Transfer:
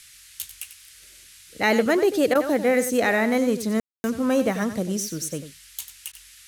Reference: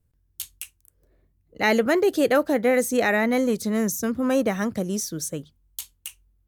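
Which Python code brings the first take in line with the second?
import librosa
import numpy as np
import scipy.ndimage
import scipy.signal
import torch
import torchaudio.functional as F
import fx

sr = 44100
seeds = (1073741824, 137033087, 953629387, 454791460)

y = fx.fix_ambience(x, sr, seeds[0], print_start_s=1.0, print_end_s=1.5, start_s=3.8, end_s=4.04)
y = fx.fix_interpolate(y, sr, at_s=(2.34, 6.12), length_ms=11.0)
y = fx.noise_reduce(y, sr, print_start_s=1.0, print_end_s=1.5, reduce_db=17.0)
y = fx.fix_echo_inverse(y, sr, delay_ms=94, level_db=-11.5)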